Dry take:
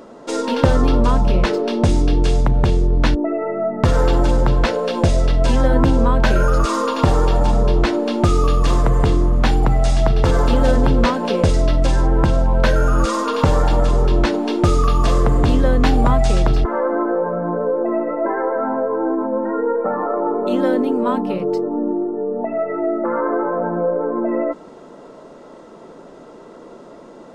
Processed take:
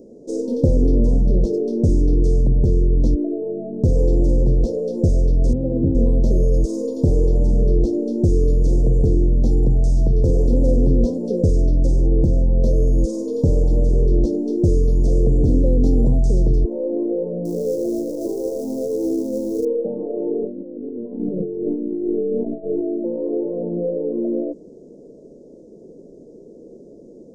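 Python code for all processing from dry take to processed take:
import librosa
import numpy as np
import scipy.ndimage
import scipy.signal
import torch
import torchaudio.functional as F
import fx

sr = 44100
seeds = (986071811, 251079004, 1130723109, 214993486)

y = fx.chain(x, sr, fx.cvsd(bps=16000),
    fx.highpass(hz=60.0, slope=24),
    fx.high_shelf(hz=2200.0, db=-8.5), at=(5.53, 5.95))
y = fx.chain(y, sr, fx.hum_notches(base_hz=60, count=4),
    fx.quant_companded(bits=4), at=(17.45, 19.65))
y = fx.chain(y, sr, fx.low_shelf(hz=110.0, db=7.5),
    fx.over_compress(threshold_db=-22.0, ratio=-0.5),
    fx.lowpass(hz=1600.0, slope=12), at=(20.43, 22.81))
y = scipy.signal.sosfilt(scipy.signal.cheby1(3, 1.0, [470.0, 5800.0], 'bandstop', fs=sr, output='sos'), y)
y = fx.high_shelf(y, sr, hz=3300.0, db=-11.0)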